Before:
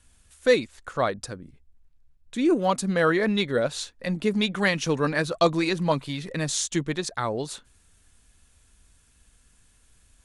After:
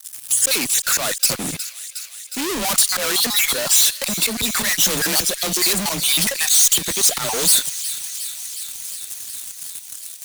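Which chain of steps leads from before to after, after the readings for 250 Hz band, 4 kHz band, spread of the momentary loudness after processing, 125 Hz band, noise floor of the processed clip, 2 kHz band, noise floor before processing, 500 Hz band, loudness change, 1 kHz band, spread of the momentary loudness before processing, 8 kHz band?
-3.5 dB, +14.0 dB, 16 LU, -4.5 dB, -38 dBFS, +4.5 dB, -61 dBFS, -4.5 dB, +8.5 dB, +0.5 dB, 11 LU, +20.0 dB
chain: random holes in the spectrogram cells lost 37%; high-pass 110 Hz 12 dB/octave; gate -54 dBFS, range -8 dB; treble shelf 2.3 kHz +6.5 dB; slow attack 645 ms; in parallel at -1.5 dB: compression, threshold -40 dBFS, peak gain reduction 16.5 dB; on the sum: frequency shift +26 Hz; fuzz box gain 53 dB, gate -59 dBFS; pre-emphasis filter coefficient 0.8; on a send: feedback echo behind a high-pass 362 ms, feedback 75%, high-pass 2.3 kHz, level -12.5 dB; on the sum: trim +2.5 dB

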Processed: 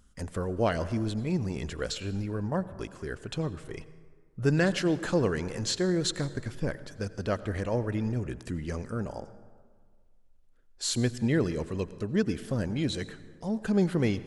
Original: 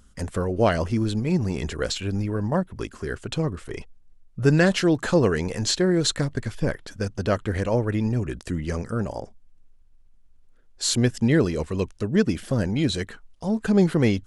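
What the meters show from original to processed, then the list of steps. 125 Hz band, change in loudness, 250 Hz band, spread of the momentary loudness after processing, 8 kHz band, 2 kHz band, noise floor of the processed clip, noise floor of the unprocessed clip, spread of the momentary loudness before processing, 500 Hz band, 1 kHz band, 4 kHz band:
-6.5 dB, -6.5 dB, -6.5 dB, 11 LU, -6.5 dB, -6.5 dB, -59 dBFS, -54 dBFS, 11 LU, -6.5 dB, -6.5 dB, -6.5 dB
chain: plate-style reverb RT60 1.7 s, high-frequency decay 0.5×, pre-delay 75 ms, DRR 15 dB; trim -6.5 dB

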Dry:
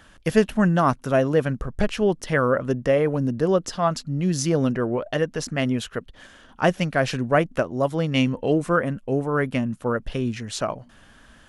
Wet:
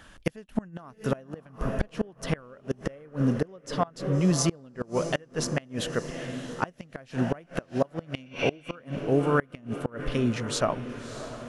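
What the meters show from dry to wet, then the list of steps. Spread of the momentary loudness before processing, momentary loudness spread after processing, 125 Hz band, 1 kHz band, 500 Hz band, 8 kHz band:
7 LU, 11 LU, -5.5 dB, -8.0 dB, -8.0 dB, -1.0 dB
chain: echo that smears into a reverb 624 ms, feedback 55%, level -13 dB; spectral replace 8.28–8.73 s, 1.4–6.3 kHz before; inverted gate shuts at -12 dBFS, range -28 dB

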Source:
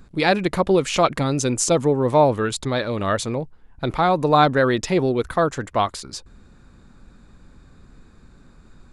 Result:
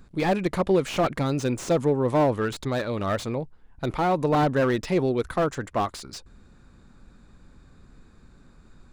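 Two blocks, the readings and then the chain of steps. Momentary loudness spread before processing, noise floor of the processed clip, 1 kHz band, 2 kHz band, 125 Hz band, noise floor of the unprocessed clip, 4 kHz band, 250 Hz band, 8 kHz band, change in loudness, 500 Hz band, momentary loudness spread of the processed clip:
11 LU, -54 dBFS, -6.5 dB, -6.5 dB, -3.0 dB, -51 dBFS, -8.5 dB, -3.0 dB, -12.5 dB, -4.5 dB, -4.5 dB, 10 LU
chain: slew-rate limiter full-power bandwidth 140 Hz; trim -3.5 dB

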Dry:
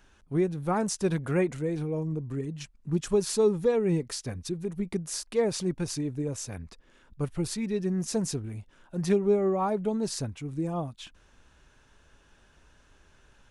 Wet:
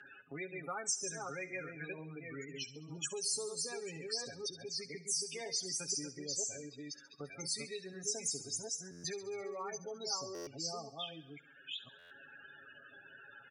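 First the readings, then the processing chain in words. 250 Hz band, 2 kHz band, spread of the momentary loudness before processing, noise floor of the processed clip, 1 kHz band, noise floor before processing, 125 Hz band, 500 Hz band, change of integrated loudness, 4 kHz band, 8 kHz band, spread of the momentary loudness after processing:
-20.0 dB, -2.5 dB, 12 LU, -59 dBFS, -11.5 dB, -61 dBFS, -20.5 dB, -16.0 dB, -10.0 dB, +1.0 dB, +1.0 dB, 18 LU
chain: chunks repeated in reverse 495 ms, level -4.5 dB; Schroeder reverb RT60 0.75 s, combs from 33 ms, DRR 18 dB; peak limiter -19.5 dBFS, peak gain reduction 9.5 dB; peaking EQ 1 kHz -7.5 dB 0.24 oct; loudest bins only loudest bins 32; high-pass 90 Hz 24 dB/octave; differentiator; comb 7.3 ms, depth 70%; feedback echo behind a high-pass 68 ms, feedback 55%, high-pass 2.8 kHz, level -12 dB; level-controlled noise filter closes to 2.1 kHz, open at -40 dBFS; buffer glitch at 8.91/10.34/11.98 s, samples 512, times 10; three bands compressed up and down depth 70%; trim +7.5 dB

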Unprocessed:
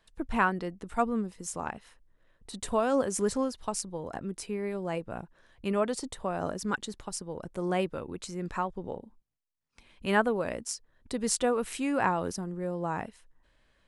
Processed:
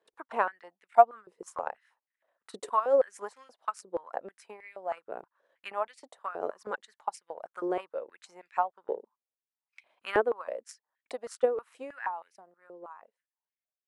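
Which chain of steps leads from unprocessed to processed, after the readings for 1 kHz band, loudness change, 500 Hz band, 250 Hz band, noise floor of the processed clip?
+2.0 dB, 0.0 dB, +0.5 dB, -14.0 dB, under -85 dBFS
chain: fade out at the end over 3.76 s; transient shaper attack +11 dB, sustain -4 dB; treble shelf 2.3 kHz -11.5 dB; step-sequenced high-pass 6.3 Hz 420–2200 Hz; trim -7.5 dB

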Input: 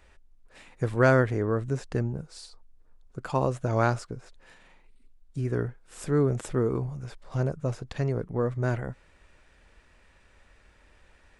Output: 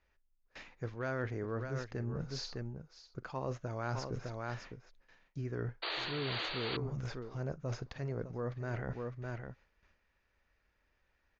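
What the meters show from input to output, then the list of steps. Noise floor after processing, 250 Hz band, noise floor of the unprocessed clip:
-77 dBFS, -12.0 dB, -60 dBFS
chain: gate with hold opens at -45 dBFS; multi-tap echo 43/607 ms -19.5/-14.5 dB; in parallel at -3.5 dB: one-sided clip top -15 dBFS; on the sum: rippled Chebyshev low-pass 6.7 kHz, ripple 3 dB; painted sound noise, 5.82–6.77 s, 300–4700 Hz -25 dBFS; reverse; compression 6:1, threshold -37 dBFS, peak gain reduction 21 dB; reverse; trim +1 dB

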